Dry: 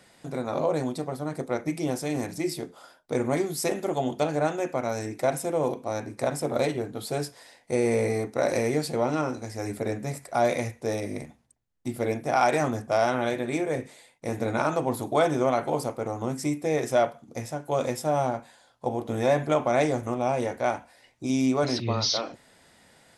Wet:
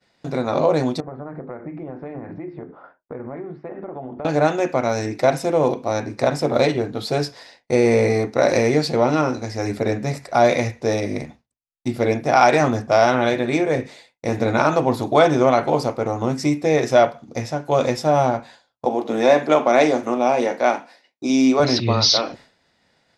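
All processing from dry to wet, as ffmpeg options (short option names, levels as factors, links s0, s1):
-filter_complex "[0:a]asettb=1/sr,asplit=3[s0][s1][s2];[s0]atrim=end=1.004[s3];[s1]atrim=start=1:end=4.25,asetpts=PTS-STARTPTS,afade=t=in:d=0.004:c=qsin,afade=t=out:st=3.246:d=0.004:c=qsin,bandreject=f=50:t=h:w=6,bandreject=f=100:t=h:w=6,bandreject=f=150:t=h:w=6,bandreject=f=200:t=h:w=6,bandreject=f=250:t=h:w=6,bandreject=f=300:t=h:w=6,bandreject=f=350:t=h:w=6,bandreject=f=400:t=h:w=6,acompressor=threshold=0.0141:ratio=6:attack=3.2:release=140:knee=1:detection=peak,lowpass=f=1700:w=0.5412,lowpass=f=1700:w=1.3066[s4];[s2]atrim=start=4.246[s5];[s3][s4]acrossfade=d=0.004:c1=hsin:c2=qsin[s6];[s6][s5]acrossfade=d=0.004:c1=qsin:c2=hsin,asettb=1/sr,asplit=3[s7][s8][s9];[s7]atrim=end=18.854[s10];[s8]atrim=start=18.85:end=21.6,asetpts=PTS-STARTPTS,afade=t=in:d=0.004:c=qsin,afade=t=out:st=2.746:d=0.004:c=qsin,highpass=f=200:w=0.5412,highpass=f=200:w=1.3066,asplit=2[s11][s12];[s12]adelay=45,volume=0.211[s13];[s11][s13]amix=inputs=2:normalize=0,atrim=end_sample=121275[s14];[s9]atrim=start=21.596[s15];[s10][s14]acrossfade=d=0.004:c1=hsin:c2=qsin[s16];[s16][s15]acrossfade=d=0.004:c1=qsin:c2=hsin,bandreject=f=3200:w=23,agate=range=0.0224:threshold=0.00447:ratio=3:detection=peak,highshelf=f=6900:t=q:w=1.5:g=-10.5,volume=2.51"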